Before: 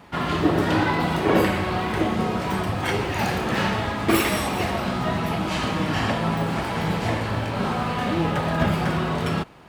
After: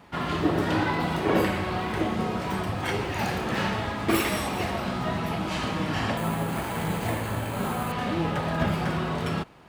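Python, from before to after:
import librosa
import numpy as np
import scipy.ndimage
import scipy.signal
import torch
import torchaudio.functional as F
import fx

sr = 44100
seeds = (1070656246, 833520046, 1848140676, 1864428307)

y = fx.resample_bad(x, sr, factor=4, down='filtered', up='hold', at=(6.17, 7.92))
y = y * 10.0 ** (-4.0 / 20.0)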